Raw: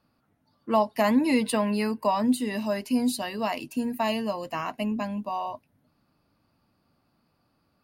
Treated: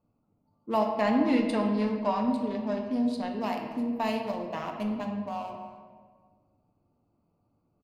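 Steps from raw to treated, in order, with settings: Wiener smoothing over 25 samples; 0.91–3.34 LPF 5200 Hz 12 dB/oct; speakerphone echo 0.28 s, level -18 dB; reverb RT60 1.6 s, pre-delay 4 ms, DRR 2 dB; gain -3.5 dB

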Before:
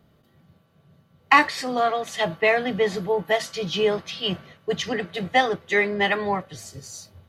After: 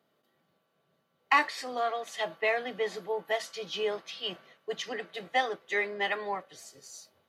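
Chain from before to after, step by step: HPF 360 Hz 12 dB/oct; gain -8 dB

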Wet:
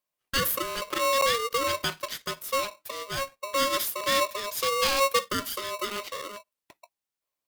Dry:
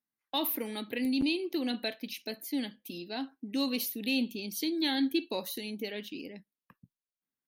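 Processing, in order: polarity switched at an audio rate 820 Hz; gain +5 dB

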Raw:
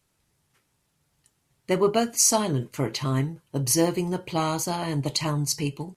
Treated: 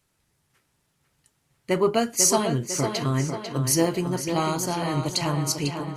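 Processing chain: bell 1700 Hz +2 dB; tape echo 0.498 s, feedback 58%, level -6 dB, low-pass 5400 Hz

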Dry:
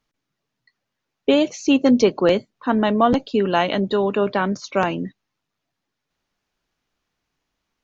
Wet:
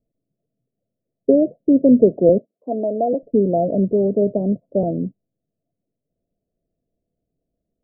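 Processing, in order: 2.38–3.23 HPF 430 Hz 12 dB/oct; vibrato 0.73 Hz 24 cents; rippled Chebyshev low-pass 690 Hz, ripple 3 dB; gain +4.5 dB

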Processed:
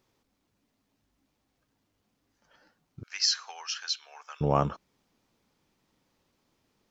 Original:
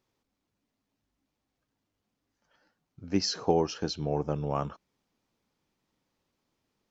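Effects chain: 3.03–4.41 HPF 1400 Hz 24 dB/oct; gain +6 dB

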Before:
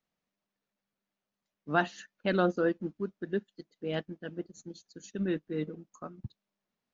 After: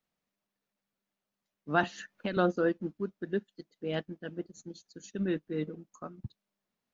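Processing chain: 1.83–2.37 three-band squash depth 100%

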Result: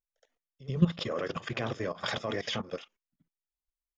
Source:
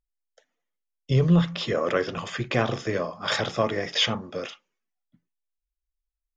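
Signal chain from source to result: pre-echo 0.126 s -18 dB; level quantiser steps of 16 dB; tempo 1.6×

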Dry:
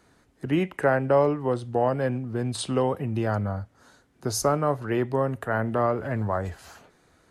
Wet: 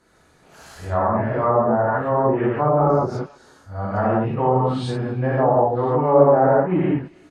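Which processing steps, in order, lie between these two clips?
whole clip reversed; dynamic EQ 890 Hz, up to +7 dB, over -37 dBFS, Q 1.3; speakerphone echo 0.32 s, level -27 dB; non-linear reverb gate 0.22 s flat, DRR -7.5 dB; treble ducked by the level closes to 910 Hz, closed at -10 dBFS; gain -3 dB

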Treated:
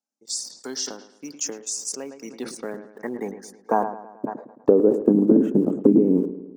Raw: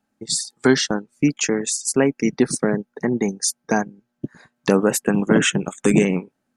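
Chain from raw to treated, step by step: band-pass sweep 5500 Hz -> 300 Hz, 1.96–5.08; in parallel at -12 dB: bit-crush 7-bit; on the sum: ten-band EQ 125 Hz +3 dB, 250 Hz +10 dB, 500 Hz +9 dB, 1000 Hz +4 dB, 2000 Hz -9 dB, 4000 Hz -8 dB; compressor 6:1, threshold -13 dBFS, peak gain reduction 10.5 dB; on a send: dark delay 0.109 s, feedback 56%, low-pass 2900 Hz, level -14 dB; on the sum: sustainer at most 100 dB/s

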